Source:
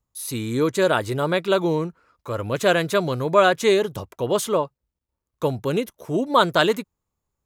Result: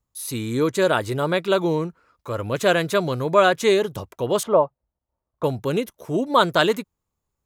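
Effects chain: 4.43–5.44 EQ curve 440 Hz 0 dB, 650 Hz +9 dB, 10000 Hz -26 dB

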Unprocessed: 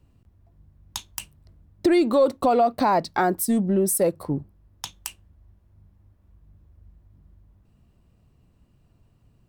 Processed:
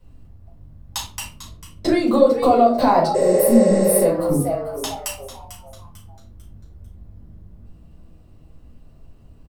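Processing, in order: 1.07–1.94 high shelf 10000 Hz -10 dB; frequency-shifting echo 0.446 s, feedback 37%, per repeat +130 Hz, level -13.5 dB; compressor 2:1, threshold -26 dBFS, peak gain reduction 7 dB; reverb RT60 0.35 s, pre-delay 4 ms, DRR -6.5 dB; 3.18–3.98 spectral repair 380–8700 Hz after; gain -1 dB

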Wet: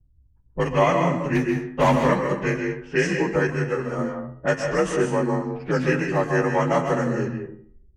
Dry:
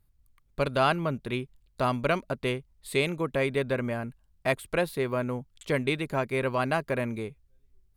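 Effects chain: inharmonic rescaling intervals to 87%; 1.35–1.96 sample leveller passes 2; in parallel at -2 dB: compressor, threshold -41 dBFS, peak gain reduction 19 dB; on the sum: high shelf 8300 Hz +6.5 dB; on a send at -4 dB: reverb RT60 0.65 s, pre-delay 0.123 s; on the sum: low-pass opened by the level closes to 310 Hz, open at -24 dBFS; de-hum 90.09 Hz, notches 40; 3.47–3.99 ensemble effect; gain +5.5 dB

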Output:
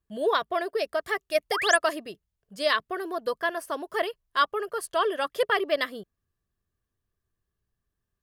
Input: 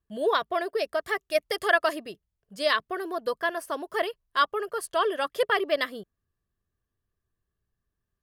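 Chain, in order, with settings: painted sound rise, 1.51–1.77, 660–11000 Hz -29 dBFS

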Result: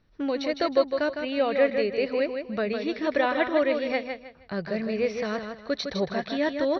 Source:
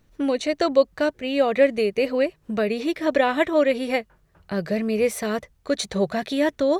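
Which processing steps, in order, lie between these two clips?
rippled Chebyshev low-pass 5700 Hz, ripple 3 dB; feedback echo 0.157 s, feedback 28%, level -6.5 dB; gain -2.5 dB

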